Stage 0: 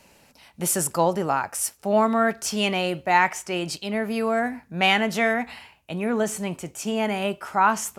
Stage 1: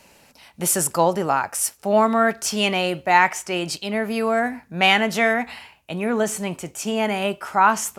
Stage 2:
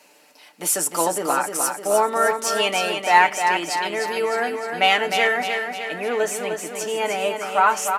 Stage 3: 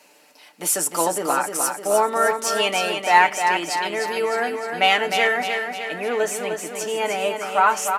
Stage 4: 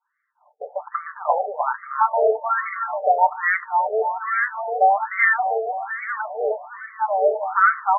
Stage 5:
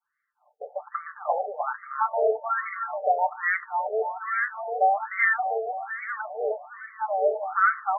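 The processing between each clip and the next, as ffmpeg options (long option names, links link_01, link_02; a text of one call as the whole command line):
ffmpeg -i in.wav -af "lowshelf=frequency=340:gain=-3,volume=3.5dB" out.wav
ffmpeg -i in.wav -af "highpass=frequency=250:width=0.5412,highpass=frequency=250:width=1.3066,aecho=1:1:6.7:0.62,aecho=1:1:305|610|915|1220|1525|1830|2135:0.501|0.276|0.152|0.0834|0.0459|0.0252|0.0139,volume=-2dB" out.wav
ffmpeg -i in.wav -af anull out.wav
ffmpeg -i in.wav -filter_complex "[0:a]agate=range=-33dB:threshold=-41dB:ratio=3:detection=peak,asplit=2[link_01][link_02];[link_02]alimiter=limit=-11.5dB:level=0:latency=1:release=222,volume=-3dB[link_03];[link_01][link_03]amix=inputs=2:normalize=0,afftfilt=real='re*between(b*sr/1024,570*pow(1600/570,0.5+0.5*sin(2*PI*1.2*pts/sr))/1.41,570*pow(1600/570,0.5+0.5*sin(2*PI*1.2*pts/sr))*1.41)':imag='im*between(b*sr/1024,570*pow(1600/570,0.5+0.5*sin(2*PI*1.2*pts/sr))/1.41,570*pow(1600/570,0.5+0.5*sin(2*PI*1.2*pts/sr))*1.41)':win_size=1024:overlap=0.75,volume=2dB" out.wav
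ffmpeg -i in.wav -af "bandreject=frequency=970:width=5.4,volume=-4.5dB" out.wav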